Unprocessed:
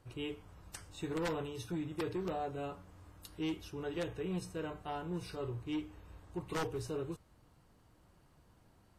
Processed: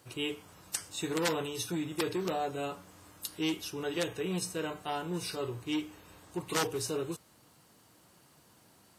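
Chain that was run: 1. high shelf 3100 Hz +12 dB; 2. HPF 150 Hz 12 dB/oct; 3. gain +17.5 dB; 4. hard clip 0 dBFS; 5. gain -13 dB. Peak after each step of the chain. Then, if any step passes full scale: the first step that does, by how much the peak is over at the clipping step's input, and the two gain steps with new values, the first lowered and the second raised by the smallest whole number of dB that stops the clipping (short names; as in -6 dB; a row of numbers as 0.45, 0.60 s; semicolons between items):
-22.0, -20.5, -3.0, -3.0, -16.0 dBFS; no overload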